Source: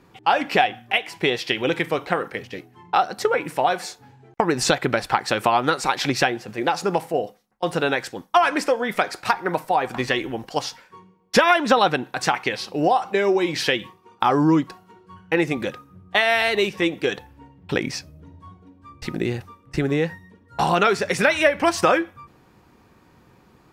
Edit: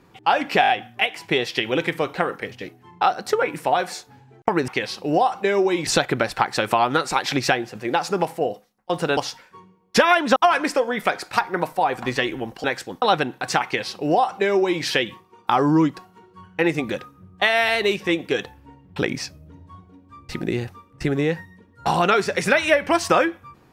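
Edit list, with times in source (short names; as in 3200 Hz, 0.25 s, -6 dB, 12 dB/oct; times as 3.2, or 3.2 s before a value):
0.61 stutter 0.02 s, 5 plays
7.9–8.28 swap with 10.56–11.75
12.38–13.57 copy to 4.6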